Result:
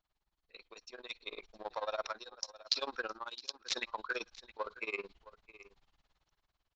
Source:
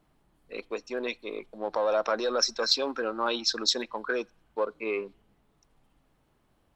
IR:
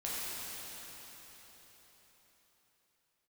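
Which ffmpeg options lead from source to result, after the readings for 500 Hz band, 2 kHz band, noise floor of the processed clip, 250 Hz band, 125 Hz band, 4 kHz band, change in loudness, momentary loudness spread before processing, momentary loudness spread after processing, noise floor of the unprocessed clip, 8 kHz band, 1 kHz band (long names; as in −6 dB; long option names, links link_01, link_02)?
−14.5 dB, −6.0 dB, below −85 dBFS, −17.5 dB, can't be measured, −10.5 dB, −10.5 dB, 12 LU, 22 LU, −69 dBFS, −12.5 dB, −9.0 dB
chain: -filter_complex "[0:a]equalizer=frequency=125:width_type=o:width=1:gain=-7,equalizer=frequency=250:width_type=o:width=1:gain=-12,equalizer=frequency=500:width_type=o:width=1:gain=-6,equalizer=frequency=4000:width_type=o:width=1:gain=10,aeval=exprs='1.06*(cos(1*acos(clip(val(0)/1.06,-1,1)))-cos(1*PI/2))+0.376*(cos(3*acos(clip(val(0)/1.06,-1,1)))-cos(3*PI/2))':channel_layout=same,areverse,acompressor=threshold=-56dB:ratio=8,areverse,aresample=16000,aresample=44100,dynaudnorm=framelen=350:gausssize=7:maxgain=14dB,equalizer=frequency=3300:width=1.9:gain=-3.5,asplit=2[link_01][link_02];[link_02]aecho=0:1:663:0.133[link_03];[link_01][link_03]amix=inputs=2:normalize=0,tremolo=f=18:d=0.92,volume=12.5dB"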